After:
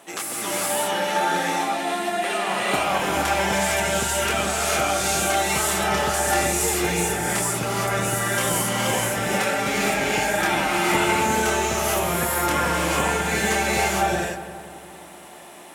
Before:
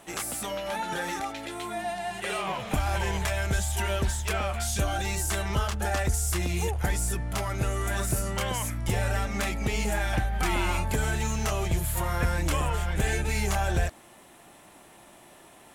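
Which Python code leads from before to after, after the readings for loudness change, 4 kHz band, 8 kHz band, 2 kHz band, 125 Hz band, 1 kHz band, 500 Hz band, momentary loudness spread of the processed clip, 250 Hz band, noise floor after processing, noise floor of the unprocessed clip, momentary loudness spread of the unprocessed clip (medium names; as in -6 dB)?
+7.0 dB, +9.5 dB, +9.0 dB, +9.5 dB, -2.5 dB, +10.0 dB, +9.0 dB, 4 LU, +7.0 dB, -42 dBFS, -53 dBFS, 5 LU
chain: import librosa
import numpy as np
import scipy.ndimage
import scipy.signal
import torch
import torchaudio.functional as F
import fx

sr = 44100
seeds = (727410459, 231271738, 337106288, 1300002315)

y = scipy.signal.sosfilt(scipy.signal.butter(2, 230.0, 'highpass', fs=sr, output='sos'), x)
y = fx.echo_filtered(y, sr, ms=179, feedback_pct=65, hz=2000.0, wet_db=-11.0)
y = fx.rev_gated(y, sr, seeds[0], gate_ms=490, shape='rising', drr_db=-5.0)
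y = y * 10.0 ** (3.0 / 20.0)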